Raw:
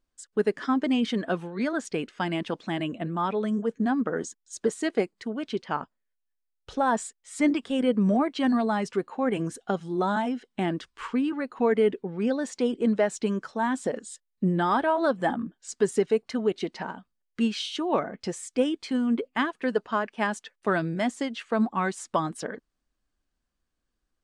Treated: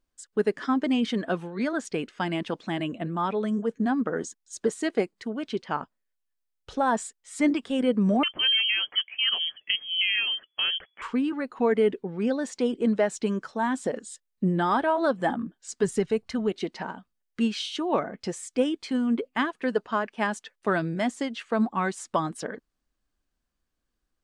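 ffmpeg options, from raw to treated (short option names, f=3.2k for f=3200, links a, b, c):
-filter_complex "[0:a]asettb=1/sr,asplit=3[a][b][c];[a]atrim=end=8.234[d];[b]atrim=start=8.23:end=11.02,asetpts=PTS-STARTPTS,afade=t=in:d=0.004:c=qsin,afade=t=out:st=2.786:d=0.004:c=qsin,lowpass=f=2.9k:t=q:w=0.5098,lowpass=f=2.9k:t=q:w=0.6013,lowpass=f=2.9k:t=q:w=0.9,lowpass=f=2.9k:t=q:w=2.563,afreqshift=-3400[e];[c]atrim=start=11.016[f];[d][e]acrossfade=d=0.004:c1=hsin:c2=qsin[g];[g][f]acrossfade=d=0.004:c1=qsin:c2=hsin,asplit=3[h][i][j];[h]afade=t=out:st=15.82:d=0.02[k];[i]asubboost=boost=4:cutoff=150,afade=t=in:st=15.82:d=0.02,afade=t=out:st=16.5:d=0.02[l];[j]afade=t=in:st=16.5:d=0.02[m];[k][l][m]amix=inputs=3:normalize=0"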